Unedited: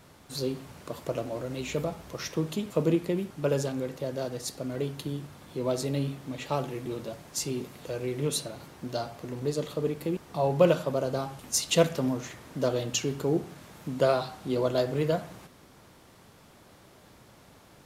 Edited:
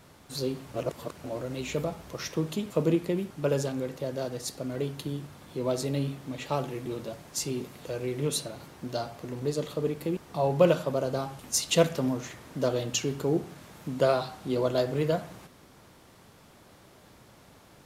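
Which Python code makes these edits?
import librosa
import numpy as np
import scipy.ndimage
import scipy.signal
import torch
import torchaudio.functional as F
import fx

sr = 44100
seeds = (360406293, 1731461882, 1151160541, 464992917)

y = fx.edit(x, sr, fx.reverse_span(start_s=0.74, length_s=0.5), tone=tone)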